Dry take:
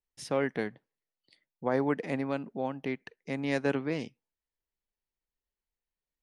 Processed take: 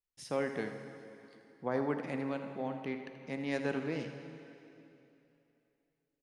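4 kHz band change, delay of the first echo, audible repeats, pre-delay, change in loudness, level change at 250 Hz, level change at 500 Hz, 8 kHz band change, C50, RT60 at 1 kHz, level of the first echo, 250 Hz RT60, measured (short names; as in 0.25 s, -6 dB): -4.5 dB, 81 ms, 1, 6 ms, -5.0 dB, -4.5 dB, -4.5 dB, n/a, 6.0 dB, 3.0 s, -11.5 dB, 3.0 s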